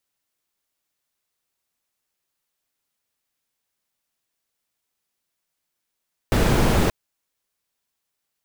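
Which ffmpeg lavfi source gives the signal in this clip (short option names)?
-f lavfi -i "anoisesrc=c=brown:a=0.624:d=0.58:r=44100:seed=1"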